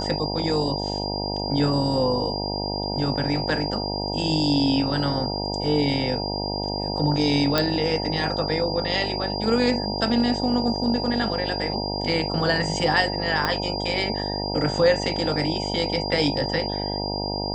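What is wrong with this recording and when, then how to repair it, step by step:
buzz 50 Hz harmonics 19 -29 dBFS
tone 4800 Hz -30 dBFS
7.58 pop -6 dBFS
13.45 pop -9 dBFS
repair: de-click; notch 4800 Hz, Q 30; de-hum 50 Hz, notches 19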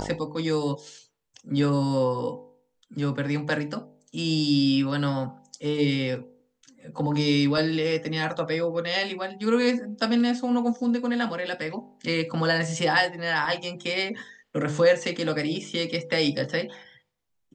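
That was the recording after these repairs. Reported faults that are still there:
13.45 pop

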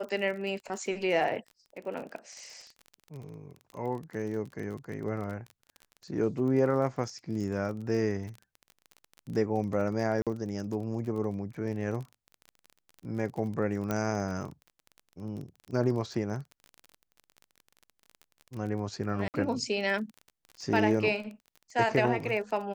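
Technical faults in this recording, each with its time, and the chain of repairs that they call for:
crackle 29/s -37 dBFS
10.22–10.27 gap 47 ms
13.91 pop -17 dBFS
19.28–19.34 gap 59 ms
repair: de-click; interpolate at 10.22, 47 ms; interpolate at 19.28, 59 ms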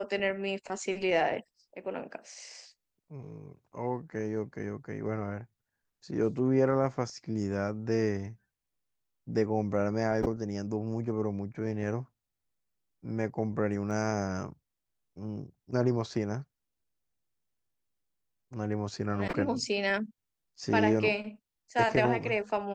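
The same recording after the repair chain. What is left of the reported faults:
13.91 pop

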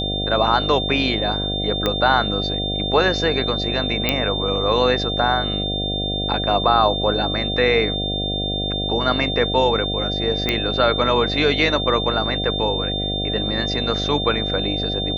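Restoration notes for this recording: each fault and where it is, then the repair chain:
buzz 50 Hz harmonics 15 -26 dBFS
tone 3600 Hz -24 dBFS
1.86 pop -7 dBFS
4.09 pop -3 dBFS
10.49 pop -6 dBFS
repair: de-click; de-hum 50 Hz, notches 15; notch 3600 Hz, Q 30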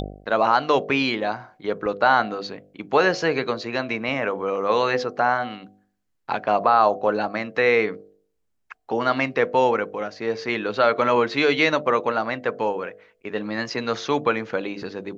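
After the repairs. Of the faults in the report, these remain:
none

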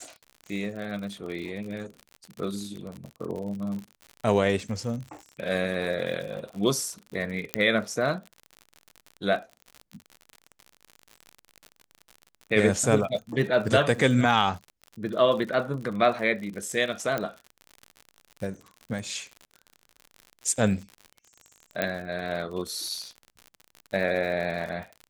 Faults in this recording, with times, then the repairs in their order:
crackle 58/s -34 dBFS
7.54 pop -7 dBFS
17.18 pop -14 dBFS
21.82 pop -12 dBFS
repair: de-click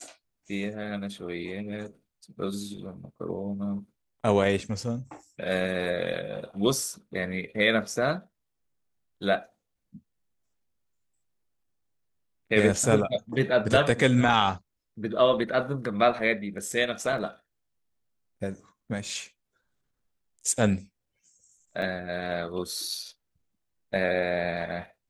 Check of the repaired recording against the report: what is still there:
17.18 pop
21.82 pop

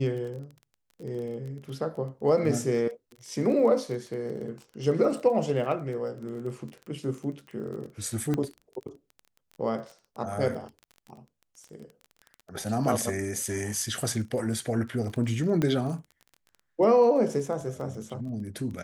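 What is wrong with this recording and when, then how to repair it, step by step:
crackle 22/s -36 dBFS
8.34 pop -16 dBFS
15.62 pop -14 dBFS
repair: de-click

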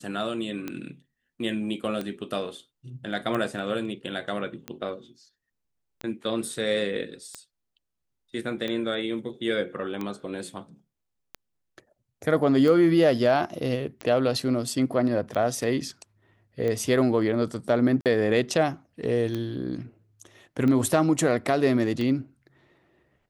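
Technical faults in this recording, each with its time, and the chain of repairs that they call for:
tick 45 rpm -18 dBFS
18.01–18.06 gap 48 ms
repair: de-click; interpolate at 18.01, 48 ms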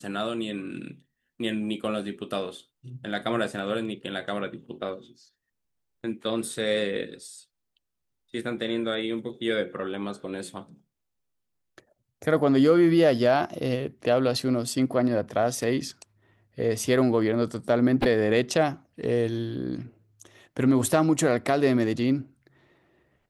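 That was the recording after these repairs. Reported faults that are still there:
none

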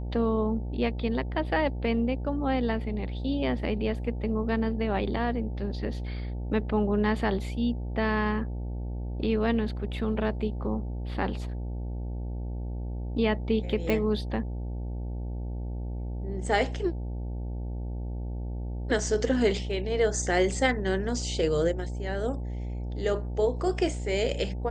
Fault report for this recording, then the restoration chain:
buzz 60 Hz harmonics 15 -33 dBFS
13.9 pop -15 dBFS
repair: de-click; de-hum 60 Hz, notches 15

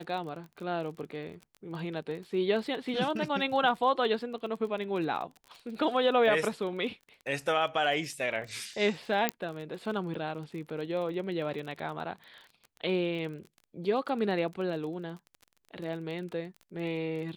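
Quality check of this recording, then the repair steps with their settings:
crackle 28/s -39 dBFS
9.29 pop -10 dBFS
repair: de-click

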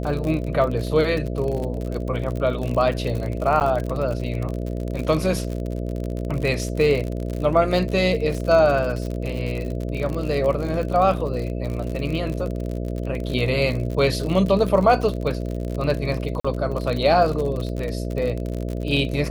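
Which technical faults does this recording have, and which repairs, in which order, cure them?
buzz 60 Hz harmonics 11 -27 dBFS
crackle 53/s -26 dBFS
3.6–3.61 gap 9.3 ms
16.4–16.45 gap 45 ms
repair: de-click; de-hum 60 Hz, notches 11; interpolate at 3.6, 9.3 ms; interpolate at 16.4, 45 ms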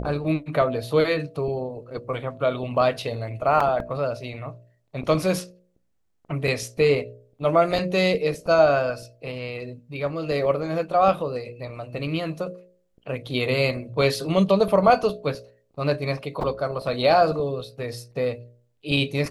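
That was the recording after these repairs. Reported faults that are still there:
none

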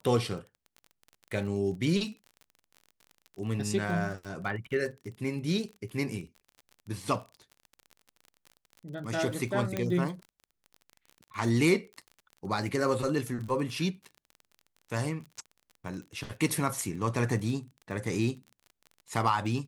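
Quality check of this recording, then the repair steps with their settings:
crackle 35/s -39 dBFS
9.77 pop -16 dBFS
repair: de-click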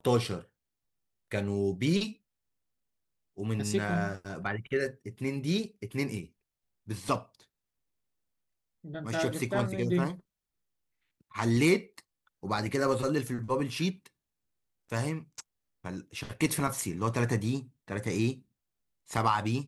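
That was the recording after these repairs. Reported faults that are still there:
9.77 pop

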